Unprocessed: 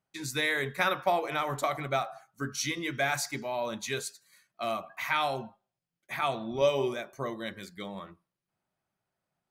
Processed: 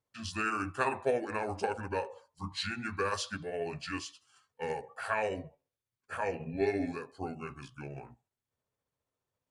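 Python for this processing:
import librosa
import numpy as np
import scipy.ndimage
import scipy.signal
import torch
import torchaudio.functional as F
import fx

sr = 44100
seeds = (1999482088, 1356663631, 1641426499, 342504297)

y = fx.pitch_heads(x, sr, semitones=-6.0)
y = F.gain(torch.from_numpy(y), -2.5).numpy()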